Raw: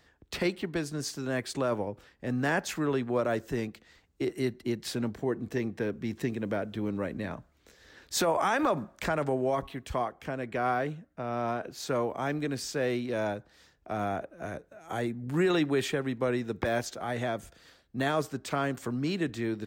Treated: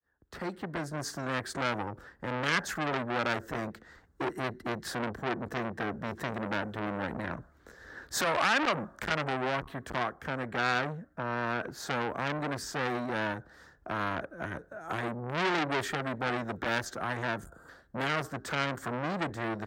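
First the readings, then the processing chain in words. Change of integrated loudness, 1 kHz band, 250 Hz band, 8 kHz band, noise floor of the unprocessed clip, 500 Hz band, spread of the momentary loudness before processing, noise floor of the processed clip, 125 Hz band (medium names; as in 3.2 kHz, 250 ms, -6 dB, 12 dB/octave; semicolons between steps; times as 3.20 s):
-1.5 dB, +1.0 dB, -4.5 dB, -2.5 dB, -65 dBFS, -5.0 dB, 9 LU, -62 dBFS, -2.5 dB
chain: fade-in on the opening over 1.08 s; dynamic bell 710 Hz, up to -5 dB, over -43 dBFS, Q 0.73; time-frequency box 17.46–17.69 s, 1.6–6.7 kHz -17 dB; resonant high shelf 2 kHz -7 dB, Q 3; transformer saturation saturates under 2.7 kHz; trim +5.5 dB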